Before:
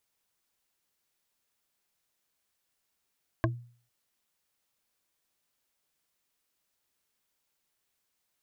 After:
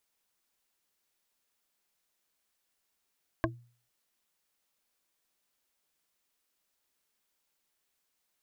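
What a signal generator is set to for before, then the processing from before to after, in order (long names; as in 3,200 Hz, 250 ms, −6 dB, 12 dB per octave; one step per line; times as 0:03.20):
struck wood bar, lowest mode 120 Hz, decay 0.47 s, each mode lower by 0 dB, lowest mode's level −23 dB
parametric band 110 Hz −10 dB 0.61 octaves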